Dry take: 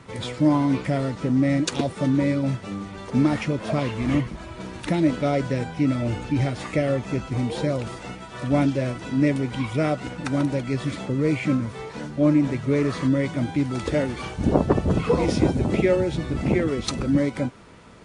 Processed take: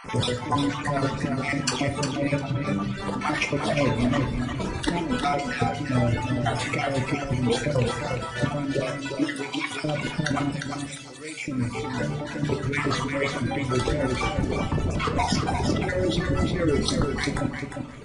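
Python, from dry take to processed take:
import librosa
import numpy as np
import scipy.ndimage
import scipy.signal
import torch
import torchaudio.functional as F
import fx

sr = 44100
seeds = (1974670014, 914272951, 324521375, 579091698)

p1 = fx.spec_dropout(x, sr, seeds[0], share_pct=31)
p2 = fx.highpass(p1, sr, hz=900.0, slope=6, at=(8.79, 9.78))
p3 = fx.dereverb_blind(p2, sr, rt60_s=1.7)
p4 = fx.lowpass(p3, sr, hz=4200.0, slope=12, at=(2.1, 2.67))
p5 = fx.differentiator(p4, sr, at=(10.51, 11.48))
p6 = fx.over_compress(p5, sr, threshold_db=-29.0, ratio=-1.0)
p7 = 10.0 ** (-7.5 / 20.0) * np.tanh(p6 / 10.0 ** (-7.5 / 20.0))
p8 = p7 + fx.echo_feedback(p7, sr, ms=353, feedback_pct=16, wet_db=-6.0, dry=0)
p9 = fx.room_shoebox(p8, sr, seeds[1], volume_m3=92.0, walls='mixed', distance_m=0.39)
y = F.gain(torch.from_numpy(p9), 3.5).numpy()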